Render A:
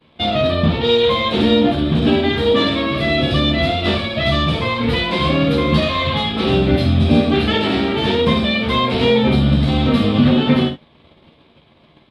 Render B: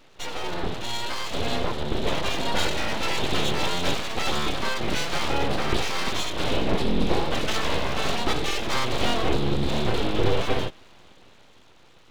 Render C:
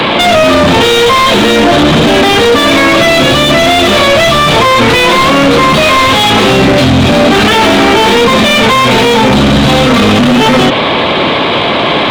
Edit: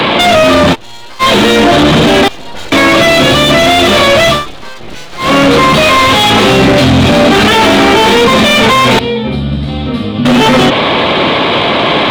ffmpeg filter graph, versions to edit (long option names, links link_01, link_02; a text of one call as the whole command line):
ffmpeg -i take0.wav -i take1.wav -i take2.wav -filter_complex "[1:a]asplit=3[link_01][link_02][link_03];[2:a]asplit=5[link_04][link_05][link_06][link_07][link_08];[link_04]atrim=end=0.76[link_09];[link_01]atrim=start=0.72:end=1.23[link_10];[link_05]atrim=start=1.19:end=2.282[link_11];[link_02]atrim=start=2.278:end=2.722[link_12];[link_06]atrim=start=2.718:end=4.47[link_13];[link_03]atrim=start=4.31:end=5.32[link_14];[link_07]atrim=start=5.16:end=8.992[link_15];[0:a]atrim=start=8.988:end=10.252[link_16];[link_08]atrim=start=10.248[link_17];[link_09][link_10]acrossfade=duration=0.04:curve1=tri:curve2=tri[link_18];[link_18][link_11]acrossfade=duration=0.04:curve1=tri:curve2=tri[link_19];[link_19][link_12]acrossfade=duration=0.004:curve1=hsin:curve2=hsin[link_20];[link_20][link_13]acrossfade=duration=0.004:curve1=hsin:curve2=hsin[link_21];[link_21][link_14]acrossfade=duration=0.16:curve1=tri:curve2=tri[link_22];[link_22][link_15]acrossfade=duration=0.16:curve1=tri:curve2=tri[link_23];[link_23][link_16]acrossfade=duration=0.004:curve1=hsin:curve2=hsin[link_24];[link_24][link_17]acrossfade=duration=0.004:curve1=hsin:curve2=hsin" out.wav